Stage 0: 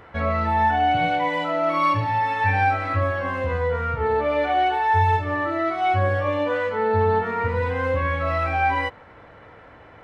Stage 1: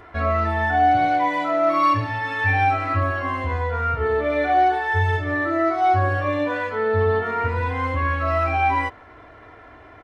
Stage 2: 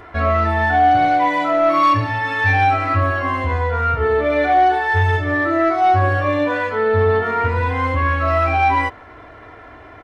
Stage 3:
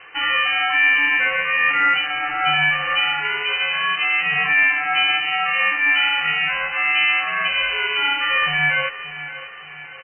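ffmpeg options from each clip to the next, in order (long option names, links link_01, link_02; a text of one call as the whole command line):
ffmpeg -i in.wav -af "aecho=1:1:2.9:0.64" out.wav
ffmpeg -i in.wav -af "asoftclip=type=tanh:threshold=-11dB,volume=5dB" out.wav
ffmpeg -i in.wav -af "aecho=1:1:577|1154|1731|2308|2885:0.2|0.0958|0.046|0.0221|0.0106,lowpass=frequency=2400:width_type=q:width=0.5098,lowpass=frequency=2400:width_type=q:width=0.6013,lowpass=frequency=2400:width_type=q:width=0.9,lowpass=frequency=2400:width_type=q:width=2.563,afreqshift=-2800,aeval=exprs='val(0)*sin(2*PI*290*n/s)':channel_layout=same" out.wav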